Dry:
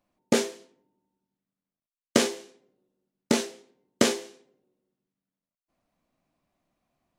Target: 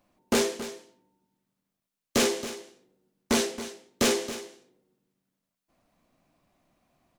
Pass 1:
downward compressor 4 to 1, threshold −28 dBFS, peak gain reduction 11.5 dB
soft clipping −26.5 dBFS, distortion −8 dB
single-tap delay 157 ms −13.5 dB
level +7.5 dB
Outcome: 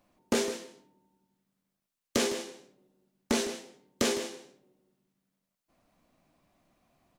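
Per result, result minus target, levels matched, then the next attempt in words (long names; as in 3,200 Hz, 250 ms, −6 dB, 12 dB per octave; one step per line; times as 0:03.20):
downward compressor: peak gain reduction +11.5 dB; echo 116 ms early
soft clipping −26.5 dBFS, distortion −4 dB
single-tap delay 157 ms −13.5 dB
level +7.5 dB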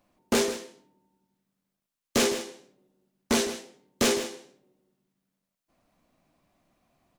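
echo 116 ms early
soft clipping −26.5 dBFS, distortion −4 dB
single-tap delay 273 ms −13.5 dB
level +7.5 dB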